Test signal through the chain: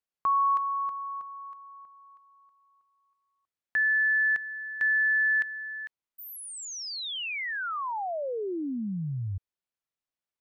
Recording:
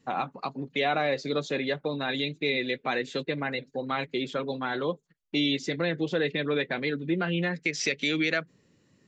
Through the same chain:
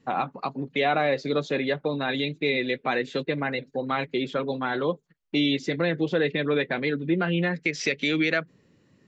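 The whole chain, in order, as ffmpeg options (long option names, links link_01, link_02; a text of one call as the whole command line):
ffmpeg -i in.wav -af "highshelf=frequency=5900:gain=-12,volume=3.5dB" out.wav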